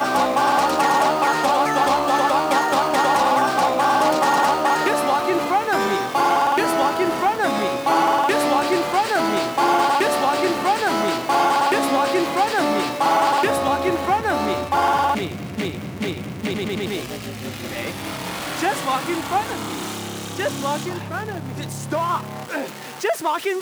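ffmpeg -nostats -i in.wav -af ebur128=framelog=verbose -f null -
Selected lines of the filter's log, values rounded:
Integrated loudness:
  I:         -20.1 LUFS
  Threshold: -30.2 LUFS
Loudness range:
  LRA:         7.9 LU
  Threshold: -40.2 LUFS
  LRA low:   -25.8 LUFS
  LRA high:  -17.9 LUFS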